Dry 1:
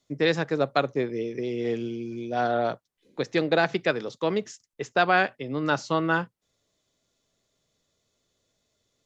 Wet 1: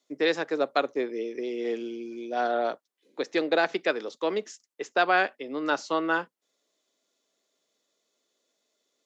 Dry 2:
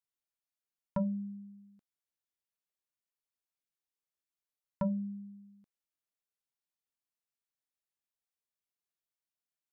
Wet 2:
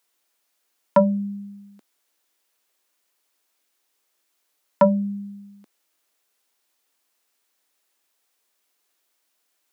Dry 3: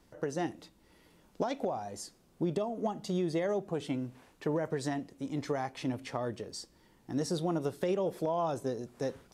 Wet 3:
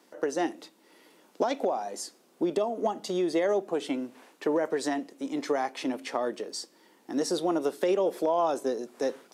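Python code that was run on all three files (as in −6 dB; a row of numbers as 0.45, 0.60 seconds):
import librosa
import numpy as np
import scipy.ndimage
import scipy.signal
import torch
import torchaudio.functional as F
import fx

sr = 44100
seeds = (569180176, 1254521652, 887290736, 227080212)

y = scipy.signal.sosfilt(scipy.signal.butter(4, 260.0, 'highpass', fs=sr, output='sos'), x)
y = y * 10.0 ** (-30 / 20.0) / np.sqrt(np.mean(np.square(y)))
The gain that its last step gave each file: −1.5, +21.5, +6.0 decibels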